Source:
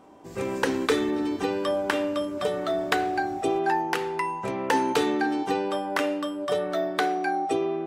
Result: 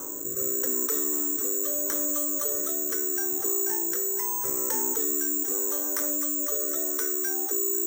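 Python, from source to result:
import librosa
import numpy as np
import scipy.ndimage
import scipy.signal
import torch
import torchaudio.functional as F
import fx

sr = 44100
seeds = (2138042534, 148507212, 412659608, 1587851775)

y = scipy.signal.sosfilt(scipy.signal.butter(2, 170.0, 'highpass', fs=sr, output='sos'), x)
y = fx.bass_treble(y, sr, bass_db=9, treble_db=12)
y = fx.fixed_phaser(y, sr, hz=730.0, stages=6)
y = 10.0 ** (-22.0 / 20.0) * np.tanh(y / 10.0 ** (-22.0 / 20.0))
y = fx.rotary(y, sr, hz=0.8)
y = (np.kron(scipy.signal.resample_poly(y, 1, 6), np.eye(6)[0]) * 6)[:len(y)]
y = fx.echo_wet_highpass(y, sr, ms=249, feedback_pct=68, hz=1600.0, wet_db=-12.5)
y = fx.env_flatten(y, sr, amount_pct=70)
y = y * 10.0 ** (-8.0 / 20.0)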